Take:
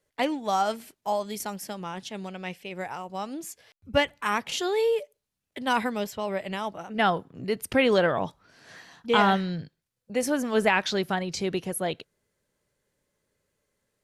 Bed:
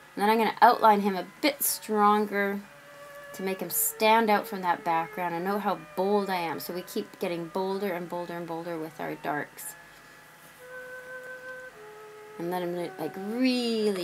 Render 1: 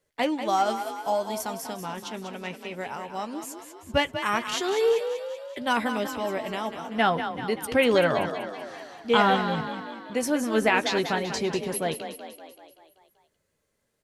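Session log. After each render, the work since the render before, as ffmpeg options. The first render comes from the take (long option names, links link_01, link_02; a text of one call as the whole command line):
ffmpeg -i in.wav -filter_complex "[0:a]asplit=2[link_01][link_02];[link_02]adelay=13,volume=-10.5dB[link_03];[link_01][link_03]amix=inputs=2:normalize=0,asplit=2[link_04][link_05];[link_05]asplit=7[link_06][link_07][link_08][link_09][link_10][link_11][link_12];[link_06]adelay=192,afreqshift=32,volume=-9dB[link_13];[link_07]adelay=384,afreqshift=64,volume=-13.9dB[link_14];[link_08]adelay=576,afreqshift=96,volume=-18.8dB[link_15];[link_09]adelay=768,afreqshift=128,volume=-23.6dB[link_16];[link_10]adelay=960,afreqshift=160,volume=-28.5dB[link_17];[link_11]adelay=1152,afreqshift=192,volume=-33.4dB[link_18];[link_12]adelay=1344,afreqshift=224,volume=-38.3dB[link_19];[link_13][link_14][link_15][link_16][link_17][link_18][link_19]amix=inputs=7:normalize=0[link_20];[link_04][link_20]amix=inputs=2:normalize=0" out.wav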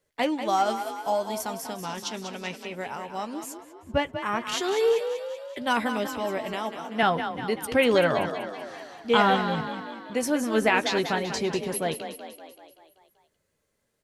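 ffmpeg -i in.wav -filter_complex "[0:a]asettb=1/sr,asplit=3[link_01][link_02][link_03];[link_01]atrim=end=1.834[link_04];[link_02]atrim=start=1.83:end=2.65,asetpts=PTS-STARTPTS,afade=type=in:duration=0.004:curve=qsin,afade=type=out:start_time=0.816:duration=0.004:curve=qsin,equalizer=frequency=5300:width=0.99:gain=8.5[link_05];[link_03]atrim=start=2.646[link_06];[link_04][link_05]acrossfade=duration=0.004:curve1=hsin:curve2=qsin[link_07];[link_07][link_06]acrossfade=duration=0.004:curve1=qsin:curve2=hsin,asettb=1/sr,asplit=3[link_08][link_09][link_10];[link_08]atrim=end=3.574[link_11];[link_09]atrim=start=3.57:end=4.47,asetpts=PTS-STARTPTS,afade=type=in:duration=0.004:curve=qsin,afade=type=out:start_time=0.896:duration=0.004:curve=qsin,highshelf=frequency=2300:gain=-11.5[link_12];[link_10]atrim=start=4.466[link_13];[link_11][link_12]acrossfade=duration=0.004:curve1=hsin:curve2=qsin[link_14];[link_14][link_13]acrossfade=duration=0.004:curve1=qsin:curve2=hsin,asettb=1/sr,asplit=3[link_15][link_16][link_17];[link_15]atrim=end=6.534[link_18];[link_16]atrim=start=6.53:end=7.03,asetpts=PTS-STARTPTS,afade=type=in:duration=0.004:curve=qsin,afade=type=out:start_time=0.496:duration=0.004:curve=qsin,highpass=180[link_19];[link_17]atrim=start=7.026[link_20];[link_18][link_19]acrossfade=duration=0.004:curve1=hsin:curve2=qsin[link_21];[link_21][link_20]acrossfade=duration=0.004:curve1=qsin:curve2=hsin" out.wav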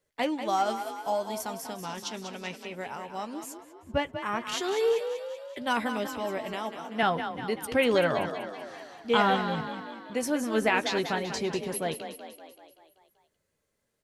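ffmpeg -i in.wav -af "volume=-3dB" out.wav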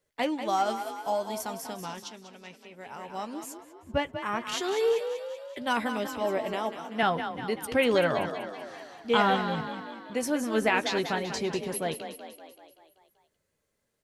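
ffmpeg -i in.wav -filter_complex "[0:a]asettb=1/sr,asplit=3[link_01][link_02][link_03];[link_01]atrim=end=6.214[link_04];[link_02]atrim=start=6.21:end=6.73,asetpts=PTS-STARTPTS,afade=type=in:duration=0.004:curve=qsin,afade=type=out:start_time=0.516:duration=0.004:curve=qsin,equalizer=frequency=510:width_type=o:width=1.7:gain=5[link_05];[link_03]atrim=start=6.726[link_06];[link_04][link_05]acrossfade=duration=0.004:curve1=hsin:curve2=qsin[link_07];[link_07][link_06]acrossfade=duration=0.004:curve1=qsin:curve2=hsin,asplit=3[link_08][link_09][link_10];[link_08]atrim=end=2.17,asetpts=PTS-STARTPTS,afade=type=out:start_time=1.84:duration=0.33:silence=0.334965[link_11];[link_09]atrim=start=2.17:end=2.78,asetpts=PTS-STARTPTS,volume=-9.5dB[link_12];[link_10]atrim=start=2.78,asetpts=PTS-STARTPTS,afade=type=in:duration=0.33:silence=0.334965[link_13];[link_11][link_12][link_13]concat=n=3:v=0:a=1" out.wav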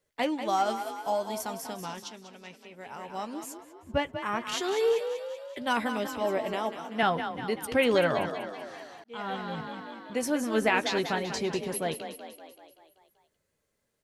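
ffmpeg -i in.wav -filter_complex "[0:a]asplit=2[link_01][link_02];[link_01]atrim=end=9.04,asetpts=PTS-STARTPTS,afade=type=out:start_time=9.036:duration=0.004:curve=hsin[link_03];[link_02]atrim=start=9.04,asetpts=PTS-STARTPTS,afade=type=in:duration=1.31:curve=qsin[link_04];[link_03][link_04]concat=n=2:v=0:a=1" out.wav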